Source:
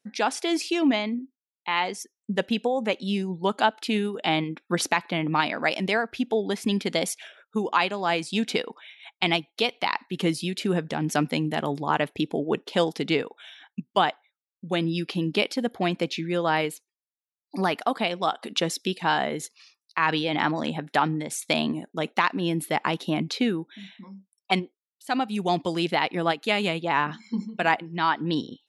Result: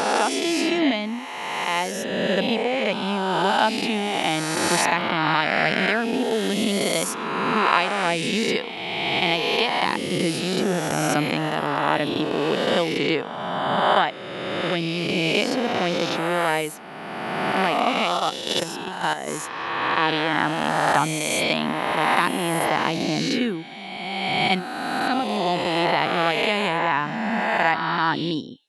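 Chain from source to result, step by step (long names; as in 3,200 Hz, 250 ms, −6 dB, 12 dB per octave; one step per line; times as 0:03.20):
peak hold with a rise ahead of every peak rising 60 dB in 2.31 s
0:18.17–0:19.28: output level in coarse steps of 10 dB
level −1.5 dB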